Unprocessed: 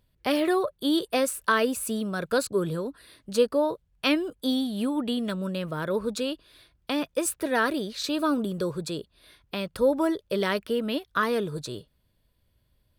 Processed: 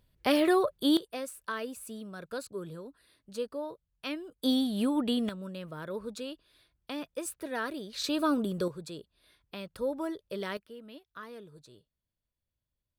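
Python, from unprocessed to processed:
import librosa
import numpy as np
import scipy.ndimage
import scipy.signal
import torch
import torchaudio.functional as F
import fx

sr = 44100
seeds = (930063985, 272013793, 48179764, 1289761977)

y = fx.gain(x, sr, db=fx.steps((0.0, -0.5), (0.97, -13.0), (4.43, -1.0), (5.29, -10.0), (7.93, -2.5), (8.68, -10.0), (10.57, -20.0)))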